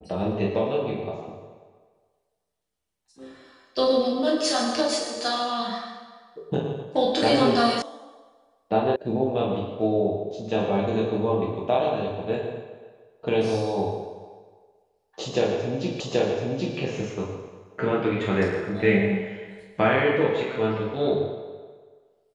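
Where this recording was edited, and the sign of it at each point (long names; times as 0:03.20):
0:07.82: cut off before it has died away
0:08.96: cut off before it has died away
0:16.00: the same again, the last 0.78 s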